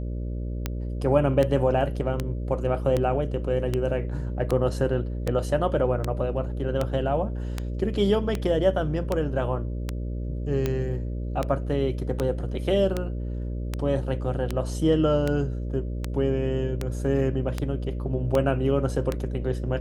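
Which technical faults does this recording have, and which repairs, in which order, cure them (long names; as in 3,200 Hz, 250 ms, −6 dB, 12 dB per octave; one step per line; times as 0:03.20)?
mains buzz 60 Hz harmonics 10 −30 dBFS
scratch tick 78 rpm −12 dBFS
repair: click removal
hum removal 60 Hz, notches 10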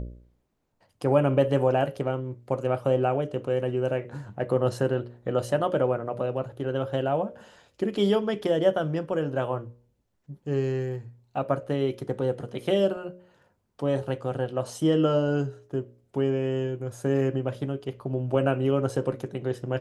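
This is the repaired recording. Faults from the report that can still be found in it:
none of them is left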